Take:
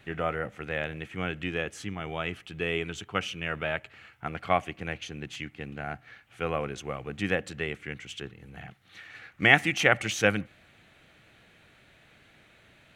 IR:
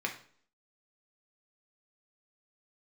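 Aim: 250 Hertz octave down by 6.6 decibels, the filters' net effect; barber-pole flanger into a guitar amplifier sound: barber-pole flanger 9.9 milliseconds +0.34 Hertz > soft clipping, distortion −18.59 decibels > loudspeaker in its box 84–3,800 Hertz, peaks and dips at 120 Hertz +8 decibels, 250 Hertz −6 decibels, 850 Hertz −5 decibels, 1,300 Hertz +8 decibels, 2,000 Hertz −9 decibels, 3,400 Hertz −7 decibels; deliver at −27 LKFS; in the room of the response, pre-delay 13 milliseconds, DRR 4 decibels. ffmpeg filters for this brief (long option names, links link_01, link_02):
-filter_complex "[0:a]equalizer=frequency=250:width_type=o:gain=-9,asplit=2[link_01][link_02];[1:a]atrim=start_sample=2205,adelay=13[link_03];[link_02][link_03]afir=irnorm=-1:irlink=0,volume=-9dB[link_04];[link_01][link_04]amix=inputs=2:normalize=0,asplit=2[link_05][link_06];[link_06]adelay=9.9,afreqshift=0.34[link_07];[link_05][link_07]amix=inputs=2:normalize=1,asoftclip=threshold=-12.5dB,highpass=84,equalizer=frequency=120:width_type=q:width=4:gain=8,equalizer=frequency=250:width_type=q:width=4:gain=-6,equalizer=frequency=850:width_type=q:width=4:gain=-5,equalizer=frequency=1300:width_type=q:width=4:gain=8,equalizer=frequency=2000:width_type=q:width=4:gain=-9,equalizer=frequency=3400:width_type=q:width=4:gain=-7,lowpass=frequency=3800:width=0.5412,lowpass=frequency=3800:width=1.3066,volume=7.5dB"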